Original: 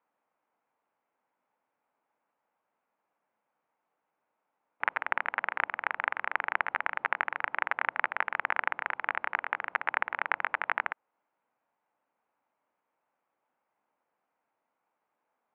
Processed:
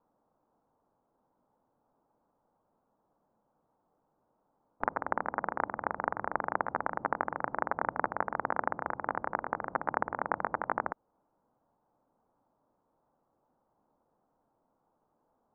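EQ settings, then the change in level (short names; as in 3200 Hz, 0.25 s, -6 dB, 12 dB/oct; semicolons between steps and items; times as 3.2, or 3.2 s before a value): LPF 1300 Hz 24 dB/oct; dynamic EQ 1000 Hz, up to -3 dB, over -47 dBFS, Q 0.96; tilt -4.5 dB/oct; +4.5 dB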